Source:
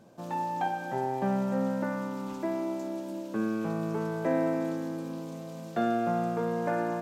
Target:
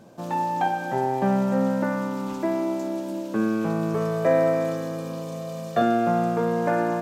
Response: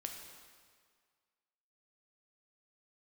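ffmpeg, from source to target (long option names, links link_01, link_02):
-filter_complex "[0:a]asettb=1/sr,asplit=3[link_01][link_02][link_03];[link_01]atrim=end=3.944[link_04];[link_02]atrim=start=3.94:end=5.82,asetpts=PTS-STARTPTS,afade=type=in:duration=0.004:curve=qsin,afade=type=out:start_time=1.876:duration=0.004:curve=qsin,aecho=1:1:1.7:0.65,atrim=end_sample=82908[link_05];[link_03]atrim=start=5.816[link_06];[link_04][link_05]acrossfade=duration=0.004:curve1=hsin:curve2=qsin[link_07];[link_07][link_06]acrossfade=duration=0.004:curve1=qsin:curve2=hsin,volume=6.5dB"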